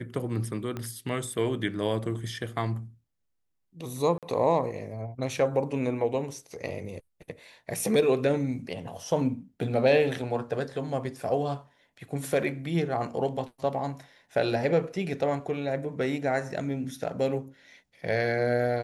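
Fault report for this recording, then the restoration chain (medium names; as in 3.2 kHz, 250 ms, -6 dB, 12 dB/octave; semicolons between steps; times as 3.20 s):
0.77 s: pop -21 dBFS
4.18–4.23 s: dropout 47 ms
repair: de-click; interpolate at 4.18 s, 47 ms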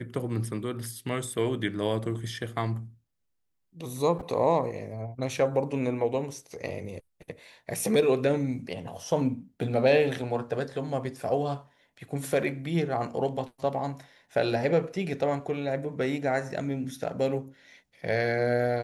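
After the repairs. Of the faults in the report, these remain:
0.77 s: pop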